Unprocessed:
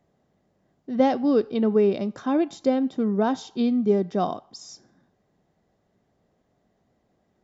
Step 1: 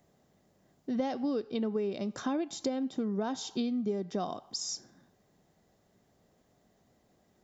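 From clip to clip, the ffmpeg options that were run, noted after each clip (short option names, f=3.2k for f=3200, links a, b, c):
-af "highshelf=f=4.7k:g=12,acompressor=threshold=-30dB:ratio=6"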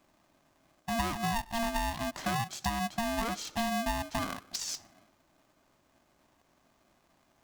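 -af "aeval=exprs='val(0)*sgn(sin(2*PI*460*n/s))':c=same"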